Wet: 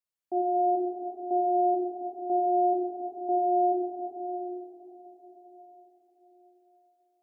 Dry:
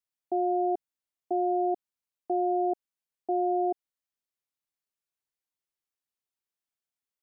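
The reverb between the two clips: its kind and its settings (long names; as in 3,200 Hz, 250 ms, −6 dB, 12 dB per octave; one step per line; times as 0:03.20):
dense smooth reverb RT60 4.7 s, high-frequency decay 0.95×, DRR −4.5 dB
level −5 dB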